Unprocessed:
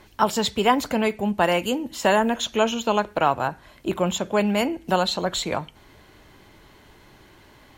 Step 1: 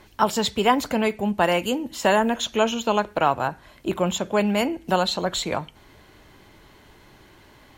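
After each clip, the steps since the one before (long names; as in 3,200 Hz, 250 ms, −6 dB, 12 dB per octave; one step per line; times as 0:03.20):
no processing that can be heard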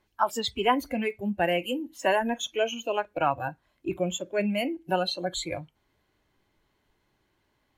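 noise reduction from a noise print of the clip's start 17 dB
level −4 dB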